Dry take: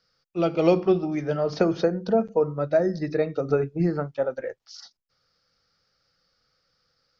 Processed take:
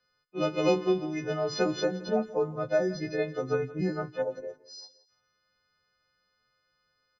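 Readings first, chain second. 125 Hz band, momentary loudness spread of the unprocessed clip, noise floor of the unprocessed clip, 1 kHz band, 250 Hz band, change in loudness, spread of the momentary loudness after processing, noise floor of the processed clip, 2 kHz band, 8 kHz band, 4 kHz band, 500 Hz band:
-7.0 dB, 10 LU, -77 dBFS, -4.0 dB, -6.0 dB, -5.0 dB, 15 LU, -76 dBFS, 0.0 dB, no reading, +2.0 dB, -5.0 dB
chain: partials quantised in pitch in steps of 3 st; level-controlled noise filter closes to 2.6 kHz, open at -18 dBFS; time-frequency box 4.22–4.91 s, 1.2–3.8 kHz -19 dB; on a send: feedback delay 171 ms, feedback 40%, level -18 dB; on the sum: trim -5 dB

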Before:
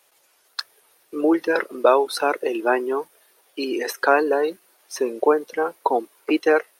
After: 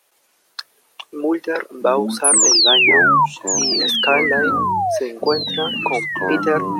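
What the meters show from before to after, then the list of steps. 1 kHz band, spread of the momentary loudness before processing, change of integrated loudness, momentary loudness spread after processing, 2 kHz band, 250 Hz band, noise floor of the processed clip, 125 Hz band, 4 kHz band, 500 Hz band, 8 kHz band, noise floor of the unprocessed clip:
+5.0 dB, 15 LU, +6.5 dB, 15 LU, +10.0 dB, +2.0 dB, -61 dBFS, no reading, +19.0 dB, 0.0 dB, +23.0 dB, -62 dBFS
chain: painted sound fall, 2.24–3.26 s, 890–11000 Hz -12 dBFS; ever faster or slower copies 114 ms, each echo -7 st, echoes 3, each echo -6 dB; trim -1 dB

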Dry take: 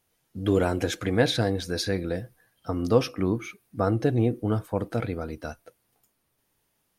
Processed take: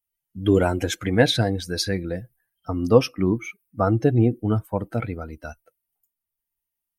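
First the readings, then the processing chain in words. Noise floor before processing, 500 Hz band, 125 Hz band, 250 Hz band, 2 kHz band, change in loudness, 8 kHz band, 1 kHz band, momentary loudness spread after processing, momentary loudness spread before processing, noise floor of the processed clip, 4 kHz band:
-74 dBFS, +3.5 dB, +4.5 dB, +4.0 dB, +4.0 dB, +4.0 dB, +4.0 dB, +4.0 dB, 15 LU, 14 LU, -85 dBFS, +4.5 dB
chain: expander on every frequency bin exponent 1.5; trim +6.5 dB

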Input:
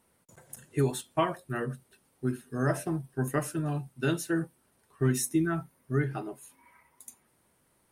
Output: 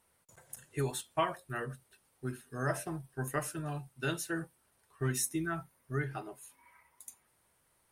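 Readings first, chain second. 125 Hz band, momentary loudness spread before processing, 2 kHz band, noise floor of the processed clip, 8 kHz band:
-7.0 dB, 20 LU, -2.0 dB, -73 dBFS, -1.5 dB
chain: peaking EQ 240 Hz -9 dB 1.9 oct; trim -1.5 dB

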